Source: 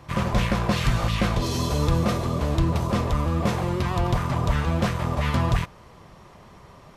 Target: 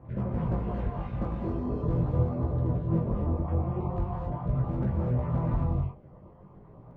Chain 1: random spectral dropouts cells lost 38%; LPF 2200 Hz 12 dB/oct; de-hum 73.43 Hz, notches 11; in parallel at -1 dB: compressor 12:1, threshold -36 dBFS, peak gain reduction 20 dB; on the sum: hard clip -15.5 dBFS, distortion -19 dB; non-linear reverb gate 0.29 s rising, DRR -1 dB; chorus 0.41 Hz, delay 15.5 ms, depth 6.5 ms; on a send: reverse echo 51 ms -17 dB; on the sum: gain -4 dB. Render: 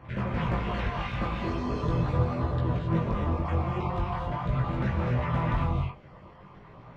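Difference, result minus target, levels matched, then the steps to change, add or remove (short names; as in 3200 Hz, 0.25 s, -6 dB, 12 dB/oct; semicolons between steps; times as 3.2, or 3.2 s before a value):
2000 Hz band +14.5 dB
change: LPF 650 Hz 12 dB/oct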